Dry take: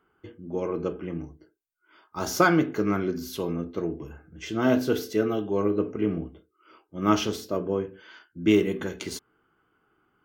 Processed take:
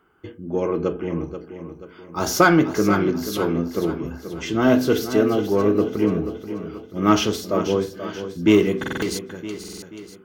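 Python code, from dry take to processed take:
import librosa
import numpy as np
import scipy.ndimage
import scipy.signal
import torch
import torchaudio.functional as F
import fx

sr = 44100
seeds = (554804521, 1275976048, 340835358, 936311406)

p1 = 10.0 ** (-21.5 / 20.0) * np.tanh(x / 10.0 ** (-21.5 / 20.0))
p2 = x + F.gain(torch.from_numpy(p1), -6.5).numpy()
p3 = fx.echo_feedback(p2, sr, ms=483, feedback_pct=45, wet_db=-10.5)
p4 = fx.buffer_glitch(p3, sr, at_s=(8.79, 9.59), block=2048, repeats=4)
y = F.gain(torch.from_numpy(p4), 3.5).numpy()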